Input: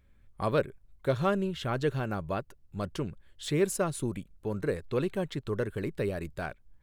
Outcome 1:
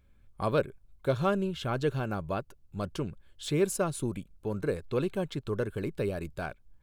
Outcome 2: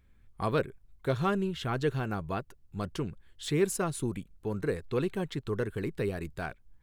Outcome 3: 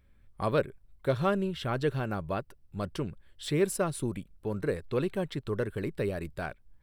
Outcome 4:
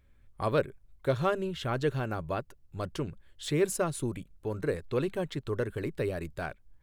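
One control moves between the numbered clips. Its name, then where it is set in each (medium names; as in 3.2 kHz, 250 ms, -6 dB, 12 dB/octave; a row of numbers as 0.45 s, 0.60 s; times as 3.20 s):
band-stop, frequency: 1.9 kHz, 580 Hz, 6.7 kHz, 200 Hz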